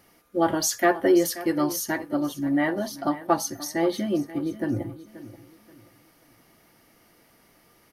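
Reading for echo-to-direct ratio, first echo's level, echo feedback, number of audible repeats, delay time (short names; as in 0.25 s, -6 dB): -15.5 dB, -16.0 dB, 32%, 2, 0.531 s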